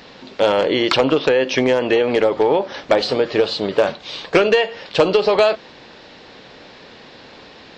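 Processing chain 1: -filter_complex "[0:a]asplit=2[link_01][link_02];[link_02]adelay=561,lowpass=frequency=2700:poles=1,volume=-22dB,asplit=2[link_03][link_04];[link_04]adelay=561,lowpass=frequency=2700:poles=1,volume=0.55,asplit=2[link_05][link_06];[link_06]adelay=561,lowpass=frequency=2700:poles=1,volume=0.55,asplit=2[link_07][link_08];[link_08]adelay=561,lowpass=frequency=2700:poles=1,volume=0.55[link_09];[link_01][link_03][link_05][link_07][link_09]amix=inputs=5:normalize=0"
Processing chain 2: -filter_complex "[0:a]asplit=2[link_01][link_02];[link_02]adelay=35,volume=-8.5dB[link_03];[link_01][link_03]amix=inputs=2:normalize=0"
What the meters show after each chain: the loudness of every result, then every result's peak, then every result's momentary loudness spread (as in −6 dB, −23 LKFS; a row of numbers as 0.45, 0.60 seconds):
−17.5, −17.0 LKFS; −2.0, −2.5 dBFS; 13, 6 LU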